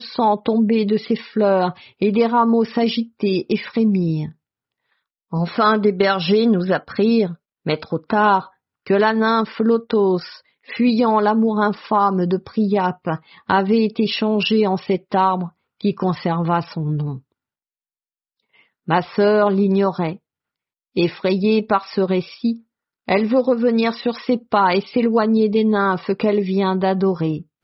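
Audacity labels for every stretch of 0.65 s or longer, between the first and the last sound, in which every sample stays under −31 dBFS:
4.290000	5.330000	silence
17.180000	18.880000	silence
20.160000	20.960000	silence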